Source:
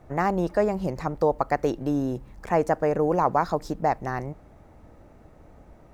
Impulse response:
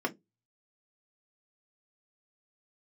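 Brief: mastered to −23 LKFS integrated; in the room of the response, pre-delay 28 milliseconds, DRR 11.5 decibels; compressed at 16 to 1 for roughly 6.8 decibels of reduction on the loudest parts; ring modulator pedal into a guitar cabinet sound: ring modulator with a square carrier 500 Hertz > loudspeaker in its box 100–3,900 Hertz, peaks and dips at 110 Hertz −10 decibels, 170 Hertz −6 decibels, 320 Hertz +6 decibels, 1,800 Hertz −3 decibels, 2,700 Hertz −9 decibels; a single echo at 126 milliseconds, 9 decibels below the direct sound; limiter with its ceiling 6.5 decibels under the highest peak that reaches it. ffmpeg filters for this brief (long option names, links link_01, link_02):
-filter_complex "[0:a]acompressor=threshold=-23dB:ratio=16,alimiter=limit=-20dB:level=0:latency=1,aecho=1:1:126:0.355,asplit=2[link_01][link_02];[1:a]atrim=start_sample=2205,adelay=28[link_03];[link_02][link_03]afir=irnorm=-1:irlink=0,volume=-18.5dB[link_04];[link_01][link_04]amix=inputs=2:normalize=0,aeval=exprs='val(0)*sgn(sin(2*PI*500*n/s))':channel_layout=same,highpass=100,equalizer=frequency=110:width_type=q:width=4:gain=-10,equalizer=frequency=170:width_type=q:width=4:gain=-6,equalizer=frequency=320:width_type=q:width=4:gain=6,equalizer=frequency=1800:width_type=q:width=4:gain=-3,equalizer=frequency=2700:width_type=q:width=4:gain=-9,lowpass=frequency=3900:width=0.5412,lowpass=frequency=3900:width=1.3066,volume=8dB"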